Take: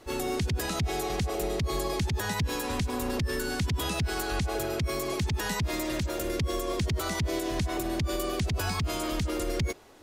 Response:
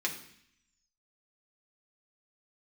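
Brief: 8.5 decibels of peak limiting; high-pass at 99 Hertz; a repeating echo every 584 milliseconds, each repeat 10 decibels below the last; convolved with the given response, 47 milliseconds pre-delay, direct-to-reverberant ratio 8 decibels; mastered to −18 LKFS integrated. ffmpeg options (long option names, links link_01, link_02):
-filter_complex "[0:a]highpass=99,alimiter=level_in=3dB:limit=-24dB:level=0:latency=1,volume=-3dB,aecho=1:1:584|1168|1752|2336:0.316|0.101|0.0324|0.0104,asplit=2[link_01][link_02];[1:a]atrim=start_sample=2205,adelay=47[link_03];[link_02][link_03]afir=irnorm=-1:irlink=0,volume=-13.5dB[link_04];[link_01][link_04]amix=inputs=2:normalize=0,volume=16.5dB"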